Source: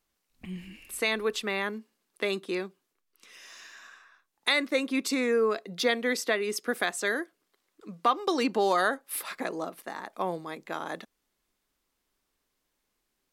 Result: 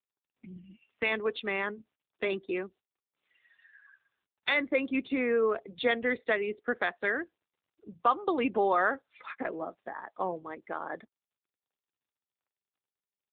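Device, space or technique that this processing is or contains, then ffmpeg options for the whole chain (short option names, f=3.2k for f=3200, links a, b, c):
mobile call with aggressive noise cancelling: -filter_complex "[0:a]asettb=1/sr,asplit=3[a][b][c];[a]atrim=end=1.684[d];[b]atrim=start=1.68:end=2.53,asetpts=PTS-STARTPTS,afade=t=in:d=0.004:c=qsin,afade=t=out:st=0.846:d=0.004:c=qsin,highshelf=f=7.3k:t=q:w=1.5:g=-7[e];[c]atrim=start=2.526[f];[d][e]acrossfade=d=0.004:c1=hsin:c2=qsin[g];[g][f]acrossfade=d=0.004:c1=qsin:c2=hsin,highpass=f=180:p=1,afftdn=nr=21:nf=-40" -ar 8000 -c:a libopencore_amrnb -b:a 7950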